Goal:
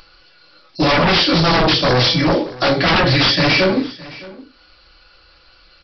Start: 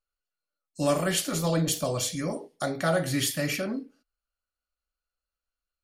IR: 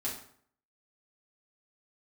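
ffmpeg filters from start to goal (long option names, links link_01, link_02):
-filter_complex "[1:a]atrim=start_sample=2205,atrim=end_sample=3969,asetrate=57330,aresample=44100[link_01];[0:a][link_01]afir=irnorm=-1:irlink=0,asplit=2[link_02][link_03];[link_03]aeval=exprs='val(0)*gte(abs(val(0)),0.0188)':channel_layout=same,volume=-11.5dB[link_04];[link_02][link_04]amix=inputs=2:normalize=0,crystalizer=i=3:c=0,acompressor=mode=upward:threshold=-36dB:ratio=2.5,aresample=11025,aeval=exprs='0.299*sin(PI/2*3.98*val(0)/0.299)':channel_layout=same,aresample=44100,aecho=1:1:615:0.1"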